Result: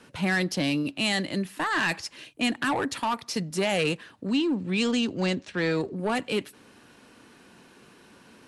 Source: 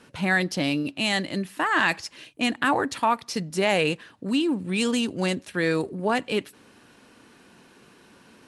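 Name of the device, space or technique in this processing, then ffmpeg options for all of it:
one-band saturation: -filter_complex "[0:a]asettb=1/sr,asplit=3[a][b][c];[a]atrim=end=4.264[d];[b]atrim=start=4.26:end=5.96,asetpts=PTS-STARTPTS,afade=t=in:d=0.004:c=qsin,afade=t=out:st=1.696:d=0.004:c=qsin,lowpass=f=6.8k:w=0.5412,lowpass=f=6.8k:w=1.3066[e];[c]atrim=start=5.956[f];[d][e]acrossfade=d=0.004:c1=hsin:c2=qsin[g];[g][f]acrossfade=d=0.004:c1=qsin:c2=hsin,acrossover=split=230|3000[h][i][j];[i]asoftclip=type=tanh:threshold=-22dB[k];[h][k][j]amix=inputs=3:normalize=0"

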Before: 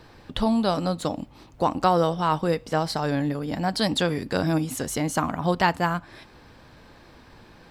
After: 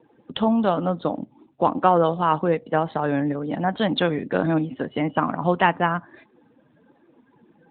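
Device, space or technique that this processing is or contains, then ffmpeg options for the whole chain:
mobile call with aggressive noise cancelling: -filter_complex "[0:a]asplit=3[a][b][c];[a]afade=t=out:st=3.88:d=0.02[d];[b]lowpass=f=9.8k:w=0.5412,lowpass=f=9.8k:w=1.3066,afade=t=in:st=3.88:d=0.02,afade=t=out:st=5.63:d=0.02[e];[c]afade=t=in:st=5.63:d=0.02[f];[d][e][f]amix=inputs=3:normalize=0,highpass=170,afftdn=nr=18:nf=-43,volume=3.5dB" -ar 8000 -c:a libopencore_amrnb -b:a 12200

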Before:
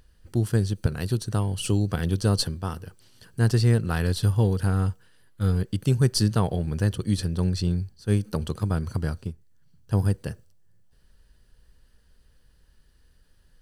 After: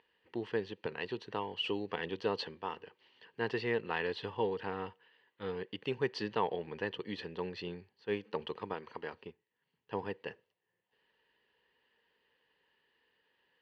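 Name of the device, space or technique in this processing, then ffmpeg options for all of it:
phone earpiece: -filter_complex "[0:a]asettb=1/sr,asplit=3[a][b][c];[a]atrim=end=8.734[d];[b]atrim=start=8.73:end=9.13,asetpts=PTS-STARTPTS,afade=t=in:d=0.004:c=qsin,afade=t=out:st=0.396:d=0.004:c=qsin,lowshelf=f=190:g=-11.5[e];[c]atrim=start=9.126[f];[d][e]acrossfade=d=0.004:c1=hsin:c2=qsin[g];[g][f]acrossfade=d=0.004:c1=qsin:c2=hsin,highpass=420,equalizer=f=440:t=q:w=4:g=6,equalizer=f=640:t=q:w=4:g=-5,equalizer=f=930:t=q:w=4:g=8,equalizer=f=1.4k:t=q:w=4:g=-8,equalizer=f=1.9k:t=q:w=4:g=8,equalizer=f=2.8k:t=q:w=4:g=7,lowpass=f=3.4k:w=0.5412,lowpass=f=3.4k:w=1.3066,volume=-5dB"

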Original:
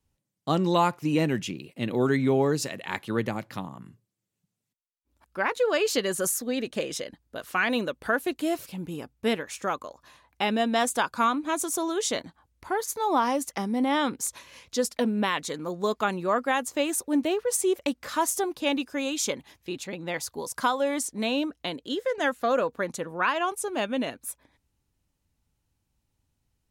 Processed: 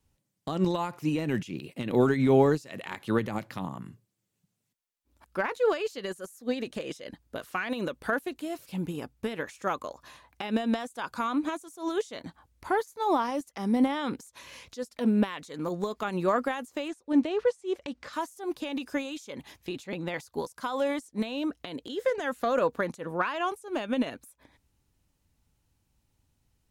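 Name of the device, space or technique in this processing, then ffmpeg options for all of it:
de-esser from a sidechain: -filter_complex "[0:a]asplit=2[a][b];[b]highpass=6.9k,apad=whole_len=1177871[c];[a][c]sidechaincompress=threshold=-54dB:ratio=8:attack=1.2:release=71,asettb=1/sr,asplit=3[d][e][f];[d]atrim=end=16.884[g];[e]atrim=start=16.88:end=18.13,asetpts=PTS-STARTPTS,afade=t=in:d=0.004:c=qsin,afade=t=out:st=1.246:d=0.004:c=qsin,lowpass=6.1k[h];[f]atrim=start=18.126[i];[g][h]acrossfade=d=0.004:c1=hsin:c2=qsin[j];[j][i]acrossfade=d=0.004:c1=qsin:c2=hsin,volume=3.5dB"

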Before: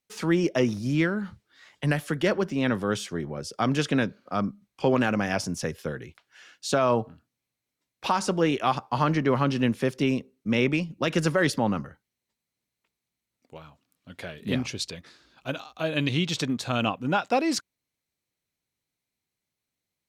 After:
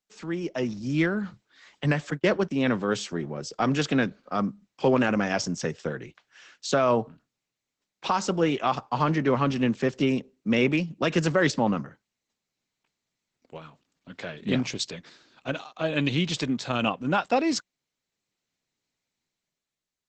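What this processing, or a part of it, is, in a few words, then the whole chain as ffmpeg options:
video call: -filter_complex "[0:a]asettb=1/sr,asplit=3[a][b][c];[a]atrim=end=2.104[d];[b]atrim=start=2.1:end=2.51,asetpts=PTS-STARTPTS,afade=t=in:d=0.004:c=qsin,afade=t=out:st=0.406:d=0.004:c=qsin,agate=range=-36dB:threshold=-26dB:ratio=16:detection=peak[e];[c]atrim=start=2.506[f];[d][e]acrossfade=d=0.004:c1=hsin:c2=qsin[g];[g][f]acrossfade=d=0.004:c1=qsin:c2=hsin,highpass=f=120:w=0.5412,highpass=f=120:w=1.3066,dynaudnorm=f=120:g=13:m=12dB,volume=-8dB" -ar 48000 -c:a libopus -b:a 12k

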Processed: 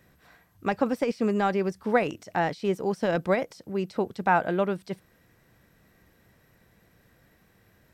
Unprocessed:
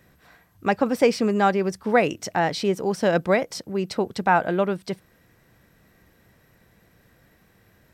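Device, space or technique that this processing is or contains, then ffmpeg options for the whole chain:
de-esser from a sidechain: -filter_complex "[0:a]asplit=2[a][b];[b]highpass=f=4.2k:w=0.5412,highpass=f=4.2k:w=1.3066,apad=whole_len=350010[c];[a][c]sidechaincompress=threshold=-45dB:ratio=16:attack=3.8:release=32,volume=-3dB"

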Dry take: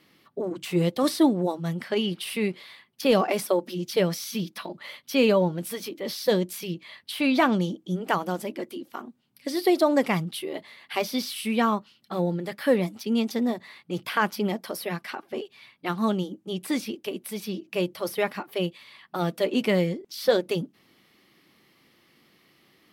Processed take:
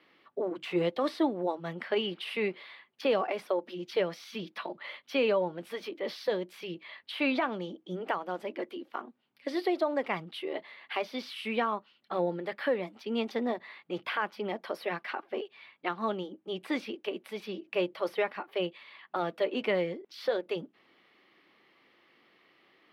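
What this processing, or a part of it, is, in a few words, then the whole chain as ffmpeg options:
DJ mixer with the lows and highs turned down: -filter_complex "[0:a]acrossover=split=320 3600:gain=0.178 1 0.0794[a][b][c];[a][b][c]amix=inputs=3:normalize=0,alimiter=limit=-18.5dB:level=0:latency=1:release=481"

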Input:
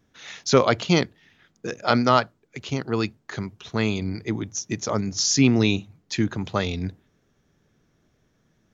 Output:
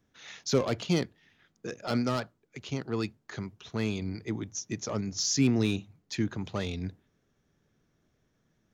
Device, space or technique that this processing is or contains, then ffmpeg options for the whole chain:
one-band saturation: -filter_complex "[0:a]acrossover=split=500|4500[a][b][c];[b]asoftclip=type=tanh:threshold=-26dB[d];[a][d][c]amix=inputs=3:normalize=0,volume=-6.5dB"

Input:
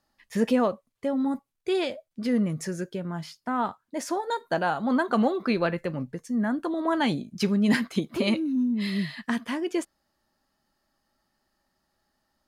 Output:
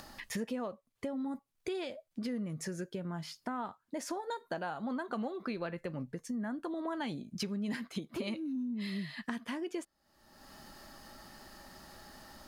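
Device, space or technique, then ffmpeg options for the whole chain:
upward and downward compression: -af "acompressor=mode=upward:threshold=-39dB:ratio=2.5,acompressor=threshold=-41dB:ratio=4,volume=3dB"

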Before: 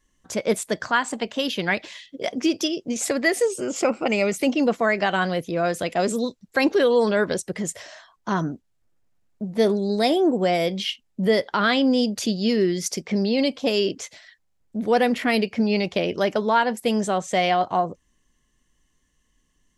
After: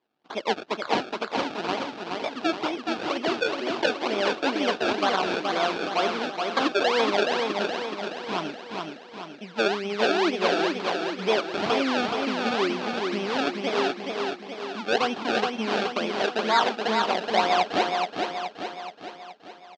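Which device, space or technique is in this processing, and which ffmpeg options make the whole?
circuit-bent sampling toy: -af "acrusher=samples=30:mix=1:aa=0.000001:lfo=1:lforange=30:lforate=2.1,highpass=400,equalizer=f=520:t=q:w=4:g=-6,equalizer=f=760:t=q:w=4:g=3,equalizer=f=1.9k:t=q:w=4:g=-6,lowpass=f=4.7k:w=0.5412,lowpass=f=4.7k:w=1.3066,equalizer=f=720:t=o:w=0.77:g=-2.5,aecho=1:1:424|848|1272|1696|2120|2544|2968:0.631|0.341|0.184|0.0994|0.0537|0.029|0.0156"

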